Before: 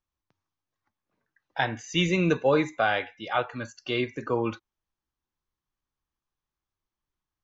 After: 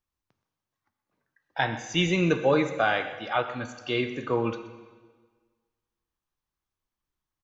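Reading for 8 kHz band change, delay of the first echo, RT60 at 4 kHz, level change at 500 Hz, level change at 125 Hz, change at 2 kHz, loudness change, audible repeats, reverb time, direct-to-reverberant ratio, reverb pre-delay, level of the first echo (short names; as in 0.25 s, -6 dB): n/a, 0.125 s, 1.4 s, +0.5 dB, +0.5 dB, +0.5 dB, 0.0 dB, 1, 1.5 s, 9.0 dB, 6 ms, -17.0 dB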